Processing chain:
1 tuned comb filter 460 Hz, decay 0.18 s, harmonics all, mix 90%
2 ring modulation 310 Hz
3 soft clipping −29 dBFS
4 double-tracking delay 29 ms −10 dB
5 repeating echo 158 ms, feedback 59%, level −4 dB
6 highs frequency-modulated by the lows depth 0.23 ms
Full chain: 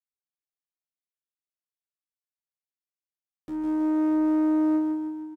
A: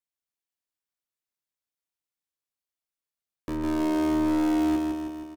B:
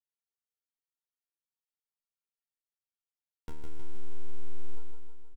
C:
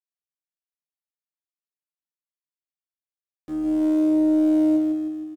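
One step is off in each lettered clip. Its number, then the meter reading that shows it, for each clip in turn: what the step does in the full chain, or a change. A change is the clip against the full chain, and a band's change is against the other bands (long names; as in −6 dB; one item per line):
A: 1, 2 kHz band +5.0 dB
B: 2, change in momentary loudness spread −3 LU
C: 3, distortion level −15 dB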